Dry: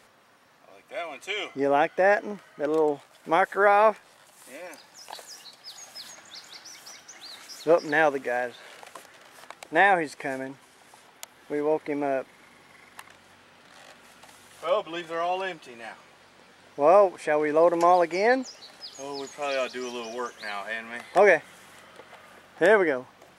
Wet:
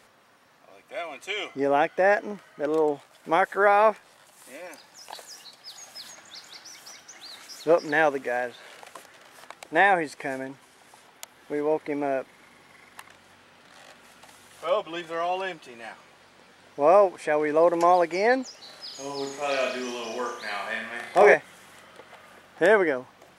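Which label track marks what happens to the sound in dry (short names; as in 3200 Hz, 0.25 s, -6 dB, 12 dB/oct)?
18.590000	21.340000	flutter echo walls apart 6.2 m, dies away in 0.57 s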